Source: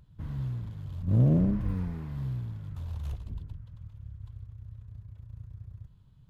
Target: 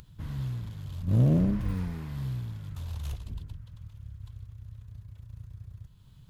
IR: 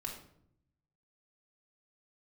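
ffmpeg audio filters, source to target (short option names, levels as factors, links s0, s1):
-af "highshelf=f=2100:g=11,acompressor=mode=upward:threshold=0.00501:ratio=2.5"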